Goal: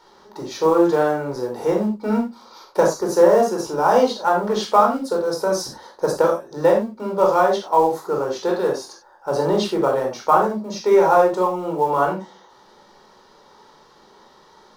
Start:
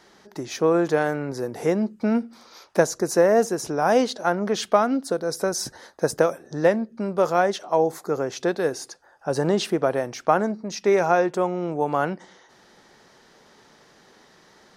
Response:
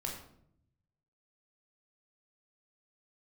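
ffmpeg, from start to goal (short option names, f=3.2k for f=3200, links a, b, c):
-filter_complex "[0:a]equalizer=f=125:t=o:w=1:g=-8,equalizer=f=1k:t=o:w=1:g=8,equalizer=f=2k:t=o:w=1:g=-7,equalizer=f=4k:t=o:w=1:g=4,equalizer=f=8k:t=o:w=1:g=-5,asplit=2[a][b];[b]acrusher=bits=4:mode=log:mix=0:aa=0.000001,volume=-8dB[c];[a][c]amix=inputs=2:normalize=0[d];[1:a]atrim=start_sample=2205,afade=t=out:st=0.15:d=0.01,atrim=end_sample=7056[e];[d][e]afir=irnorm=-1:irlink=0,volume=-2dB"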